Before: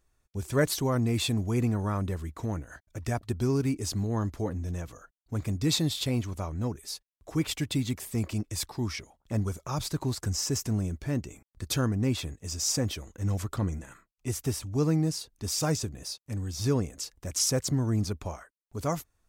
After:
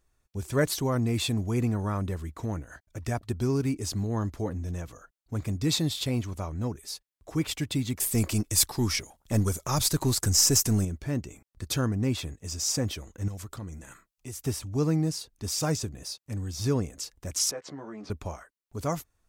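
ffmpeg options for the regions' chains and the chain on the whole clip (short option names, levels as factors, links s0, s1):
-filter_complex "[0:a]asettb=1/sr,asplit=3[s0][s1][s2];[s0]atrim=end=8.004[s3];[s1]atrim=start=8:end=10.85,asetpts=PTS-STARTPTS,afade=t=in:d=0.004:c=qsin,afade=t=out:st=2.846:d=0.004:c=qsin,aeval=exprs='if(lt(val(0),0),0.708*val(0),val(0))':c=same,equalizer=f=12000:w=0.36:g=10,acontrast=38[s4];[s2]atrim=start=10.846[s5];[s3][s4]acrossfade=d=0.004:c1=hsin:c2=qsin[s6];[s6][s5]acrossfade=d=0.004:c1=qsin:c2=hsin,asettb=1/sr,asplit=3[s7][s8][s9];[s7]atrim=end=13.284[s10];[s8]atrim=start=13.28:end=14.45,asetpts=PTS-STARTPTS,afade=t=in:d=0.004:c=qsin,afade=t=out:st=1.166:d=0.004:c=qsin,highshelf=f=4000:g=6,acompressor=threshold=0.00794:ratio=2:attack=3.2:release=140:knee=1:detection=peak[s11];[s9]atrim=start=14.446[s12];[s10][s11]acrossfade=d=0.004:c1=hsin:c2=qsin[s13];[s13][s12]acrossfade=d=0.004:c1=qsin:c2=hsin,asettb=1/sr,asplit=3[s14][s15][s16];[s14]atrim=end=17.514[s17];[s15]atrim=start=17.51:end=18.1,asetpts=PTS-STARTPTS,afade=t=in:d=0.004:c=qsin,afade=t=out:st=0.586:d=0.004:c=qsin,highpass=440,lowpass=2600,asplit=2[s18][s19];[s19]adelay=14,volume=0.708[s20];[s18][s20]amix=inputs=2:normalize=0,atrim=end_sample=26019,acompressor=threshold=0.0112:ratio=2:attack=3.2:release=140:knee=1:detection=peak[s21];[s16]atrim=start=18.096[s22];[s17][s21]acrossfade=d=0.004:c1=hsin:c2=qsin[s23];[s23][s22]acrossfade=d=0.004:c1=qsin:c2=hsin"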